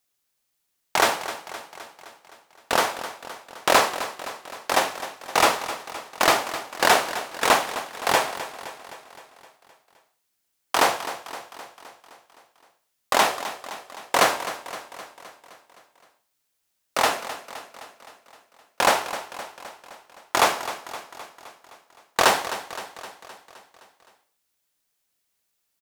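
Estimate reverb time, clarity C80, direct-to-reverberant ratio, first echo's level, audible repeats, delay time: no reverb audible, no reverb audible, no reverb audible, −13.0 dB, 5, 259 ms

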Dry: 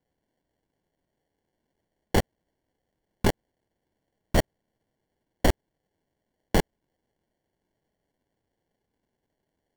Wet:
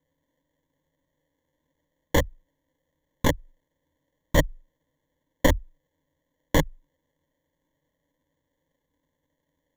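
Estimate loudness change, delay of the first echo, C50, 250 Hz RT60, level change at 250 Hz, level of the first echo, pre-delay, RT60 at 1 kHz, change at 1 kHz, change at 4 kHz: +1.5 dB, no echo audible, no reverb audible, no reverb audible, +1.5 dB, no echo audible, no reverb audible, no reverb audible, +1.0 dB, +2.0 dB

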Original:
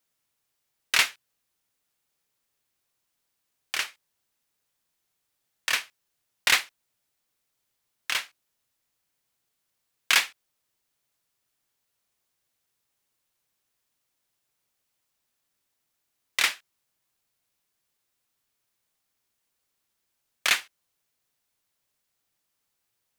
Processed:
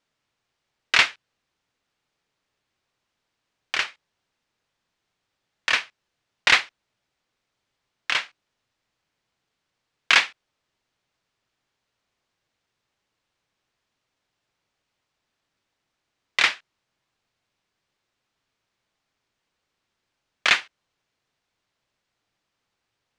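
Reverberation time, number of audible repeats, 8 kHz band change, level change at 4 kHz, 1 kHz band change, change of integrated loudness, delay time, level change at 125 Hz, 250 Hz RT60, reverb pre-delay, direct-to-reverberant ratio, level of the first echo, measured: no reverb audible, no echo audible, −4.0 dB, +3.0 dB, +6.0 dB, +4.0 dB, no echo audible, can't be measured, no reverb audible, no reverb audible, no reverb audible, no echo audible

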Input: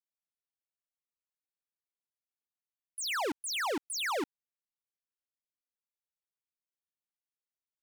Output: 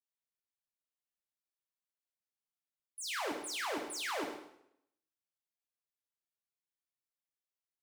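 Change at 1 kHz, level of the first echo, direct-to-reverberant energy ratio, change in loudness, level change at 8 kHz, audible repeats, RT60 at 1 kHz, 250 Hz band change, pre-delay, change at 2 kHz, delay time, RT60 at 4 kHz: −4.5 dB, −9.5 dB, 1.0 dB, −4.5 dB, −4.5 dB, 1, 0.75 s, −4.5 dB, 6 ms, −4.5 dB, 104 ms, 0.65 s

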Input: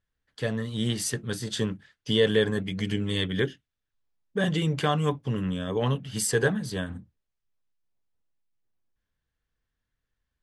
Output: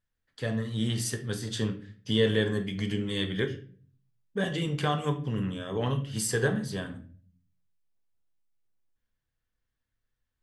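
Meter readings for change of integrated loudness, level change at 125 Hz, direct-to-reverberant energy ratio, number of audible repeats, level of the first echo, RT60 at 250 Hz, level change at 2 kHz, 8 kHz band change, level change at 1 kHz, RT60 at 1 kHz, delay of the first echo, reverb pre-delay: −2.5 dB, −1.5 dB, 6.0 dB, no echo audible, no echo audible, 0.70 s, −3.0 dB, −3.0 dB, −2.5 dB, 0.35 s, no echo audible, 3 ms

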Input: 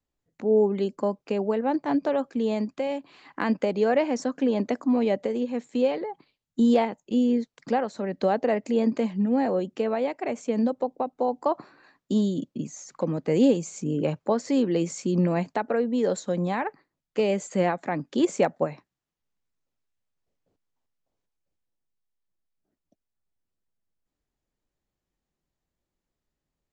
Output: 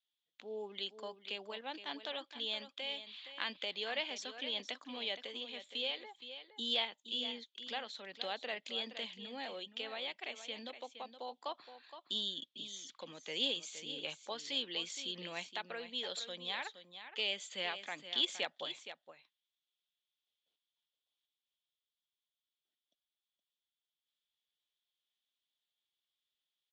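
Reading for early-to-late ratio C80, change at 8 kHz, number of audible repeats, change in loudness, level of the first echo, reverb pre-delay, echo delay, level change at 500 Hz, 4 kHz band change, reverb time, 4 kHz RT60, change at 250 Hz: no reverb audible, can't be measured, 1, −14.0 dB, −11.0 dB, no reverb audible, 468 ms, −21.0 dB, +7.5 dB, no reverb audible, no reverb audible, −27.5 dB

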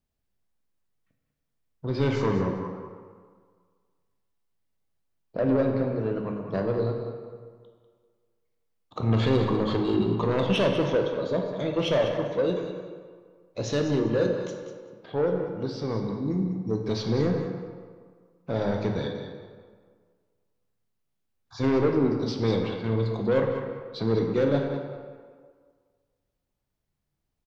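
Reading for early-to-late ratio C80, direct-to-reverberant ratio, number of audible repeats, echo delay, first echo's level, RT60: 4.5 dB, 1.5 dB, 1, 195 ms, −10.0 dB, 1.8 s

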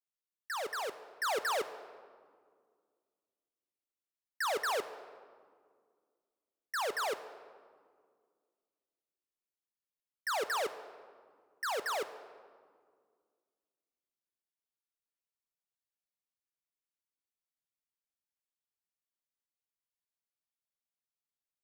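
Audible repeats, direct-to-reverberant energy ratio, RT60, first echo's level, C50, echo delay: no echo audible, 11.0 dB, 2.0 s, no echo audible, 13.0 dB, no echo audible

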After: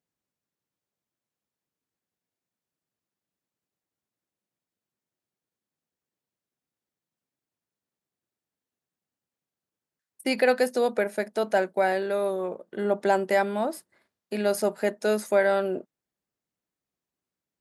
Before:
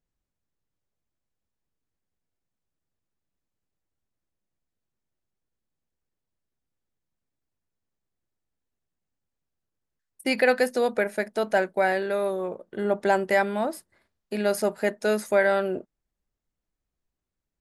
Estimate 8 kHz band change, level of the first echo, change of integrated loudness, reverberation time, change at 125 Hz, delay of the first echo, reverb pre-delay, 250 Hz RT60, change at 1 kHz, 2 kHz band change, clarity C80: 0.0 dB, no echo audible, −1.0 dB, no reverb audible, can't be measured, no echo audible, no reverb audible, no reverb audible, −0.5 dB, −3.0 dB, no reverb audible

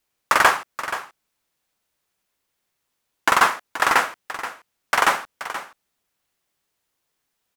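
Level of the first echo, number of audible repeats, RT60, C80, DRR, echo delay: −12.5 dB, 1, no reverb audible, no reverb audible, no reverb audible, 478 ms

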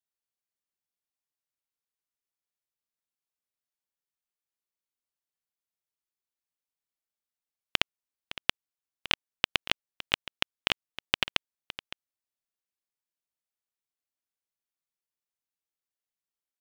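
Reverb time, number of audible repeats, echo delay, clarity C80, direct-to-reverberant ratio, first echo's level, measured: no reverb audible, 1, 562 ms, no reverb audible, no reverb audible, −15.5 dB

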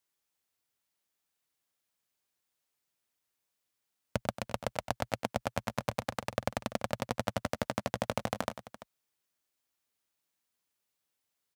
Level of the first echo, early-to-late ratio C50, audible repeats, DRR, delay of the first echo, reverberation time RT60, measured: −13.0 dB, no reverb audible, 2, no reverb audible, 96 ms, no reverb audible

